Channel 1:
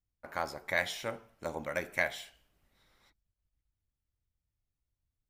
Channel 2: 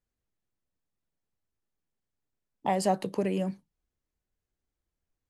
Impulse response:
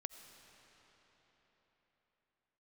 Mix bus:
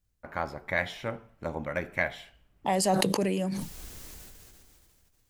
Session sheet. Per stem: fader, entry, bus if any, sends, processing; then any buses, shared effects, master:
+2.5 dB, 0.00 s, no send, bass and treble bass +7 dB, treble −12 dB
−1.0 dB, 0.00 s, no send, high-shelf EQ 3,100 Hz +9 dB; level that may fall only so fast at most 23 dB per second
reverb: not used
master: no processing

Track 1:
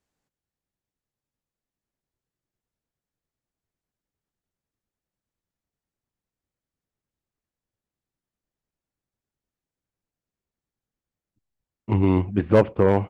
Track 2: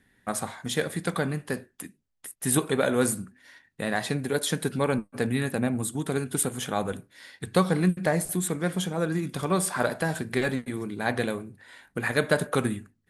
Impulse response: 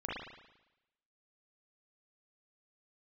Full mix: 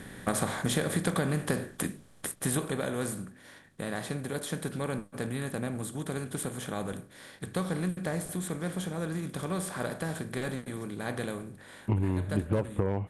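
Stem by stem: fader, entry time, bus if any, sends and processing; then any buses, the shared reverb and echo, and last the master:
−1.5 dB, 0.00 s, no send, no processing
0:02.21 −2 dB → 0:02.82 −13 dB, 0.00 s, no send, compressor on every frequency bin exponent 0.6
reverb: not used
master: low-shelf EQ 130 Hz +10 dB; downward compressor 12 to 1, threshold −24 dBFS, peak gain reduction 14.5 dB

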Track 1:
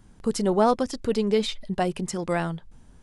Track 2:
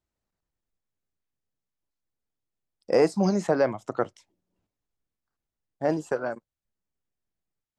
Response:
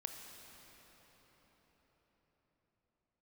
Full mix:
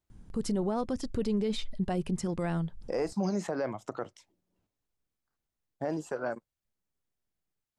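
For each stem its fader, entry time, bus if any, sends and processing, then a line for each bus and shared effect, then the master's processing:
−8.0 dB, 0.10 s, no send, low-shelf EQ 310 Hz +10.5 dB
0.0 dB, 0.00 s, no send, downward compressor 2 to 1, threshold −29 dBFS, peak gain reduction 8 dB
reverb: not used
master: brickwall limiter −22 dBFS, peak gain reduction 9 dB

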